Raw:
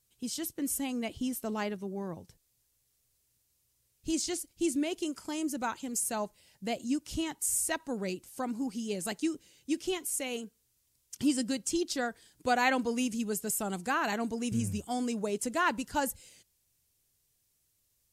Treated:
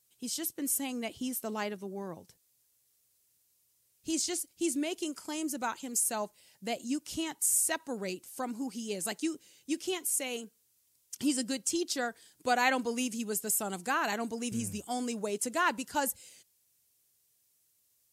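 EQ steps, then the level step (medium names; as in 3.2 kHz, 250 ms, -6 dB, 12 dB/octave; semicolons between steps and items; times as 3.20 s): high-pass 240 Hz 6 dB/octave; treble shelf 6.9 kHz +4.5 dB; 0.0 dB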